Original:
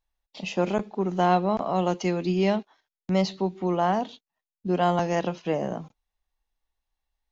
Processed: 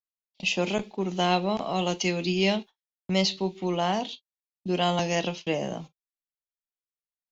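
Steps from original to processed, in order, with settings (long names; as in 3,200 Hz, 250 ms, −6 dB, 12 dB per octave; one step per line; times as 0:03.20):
noise gate −38 dBFS, range −36 dB
high shelf with overshoot 2,000 Hz +9 dB, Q 1.5
convolution reverb, pre-delay 6 ms, DRR 14 dB
level −2 dB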